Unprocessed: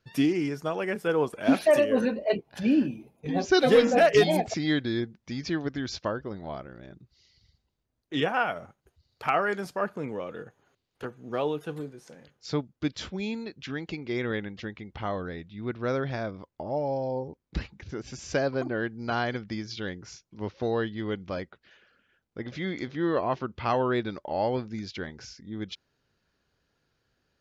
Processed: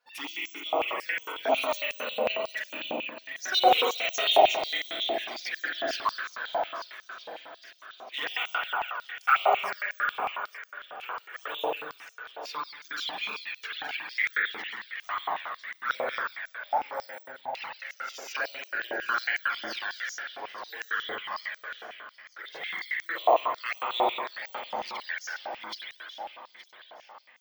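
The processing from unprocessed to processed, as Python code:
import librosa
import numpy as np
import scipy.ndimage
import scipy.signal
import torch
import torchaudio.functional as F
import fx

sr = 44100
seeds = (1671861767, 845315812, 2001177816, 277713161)

p1 = np.clip(10.0 ** (26.5 / 20.0) * x, -1.0, 1.0) / 10.0 ** (26.5 / 20.0)
p2 = x + (p1 * librosa.db_to_amplitude(-8.0))
p3 = fx.rev_spring(p2, sr, rt60_s=1.9, pass_ms=(46,), chirp_ms=60, drr_db=-5.5)
p4 = fx.env_flanger(p3, sr, rest_ms=4.1, full_db=-15.5)
p5 = p4 + fx.echo_feedback(p4, sr, ms=872, feedback_pct=59, wet_db=-14.0, dry=0)
p6 = np.repeat(p5[::2], 2)[:len(p5)]
p7 = fx.filter_held_highpass(p6, sr, hz=11.0, low_hz=790.0, high_hz=6300.0)
y = p7 * librosa.db_to_amplitude(-3.0)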